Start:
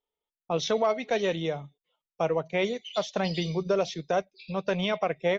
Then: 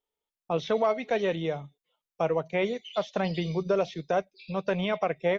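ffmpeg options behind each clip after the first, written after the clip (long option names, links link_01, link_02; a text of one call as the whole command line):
ffmpeg -i in.wav -filter_complex "[0:a]acrossover=split=3200[link_01][link_02];[link_02]acompressor=threshold=-51dB:ratio=4:attack=1:release=60[link_03];[link_01][link_03]amix=inputs=2:normalize=0" out.wav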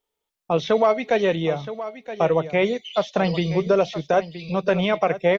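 ffmpeg -i in.wav -af "aecho=1:1:971:0.224,volume=7dB" out.wav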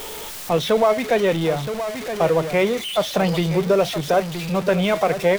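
ffmpeg -i in.wav -af "aeval=exprs='val(0)+0.5*0.0531*sgn(val(0))':channel_layout=same" out.wav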